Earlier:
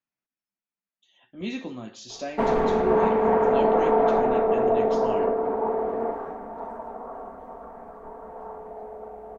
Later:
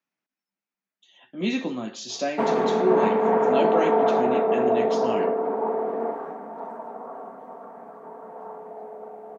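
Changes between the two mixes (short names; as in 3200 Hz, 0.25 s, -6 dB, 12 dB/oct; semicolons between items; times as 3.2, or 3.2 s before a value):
speech +6.5 dB; master: add HPF 150 Hz 24 dB/oct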